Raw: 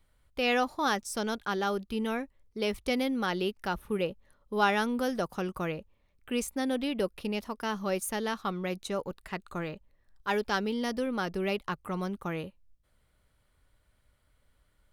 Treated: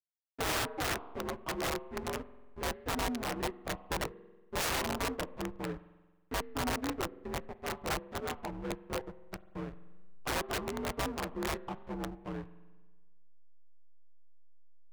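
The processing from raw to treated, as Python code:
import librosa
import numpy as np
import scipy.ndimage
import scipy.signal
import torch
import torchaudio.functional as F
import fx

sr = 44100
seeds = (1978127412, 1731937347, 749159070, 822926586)

y = fx.partial_stretch(x, sr, pct=84)
y = scipy.signal.sosfilt(scipy.signal.butter(4, 1700.0, 'lowpass', fs=sr, output='sos'), y)
y = fx.backlash(y, sr, play_db=-30.0)
y = fx.rev_spring(y, sr, rt60_s=1.3, pass_ms=(46,), chirp_ms=35, drr_db=15.0)
y = (np.mod(10.0 ** (27.0 / 20.0) * y + 1.0, 2.0) - 1.0) / 10.0 ** (27.0 / 20.0)
y = fx.peak_eq(y, sr, hz=220.0, db=-10.5, octaves=0.33)
y = fx.record_warp(y, sr, rpm=33.33, depth_cents=100.0)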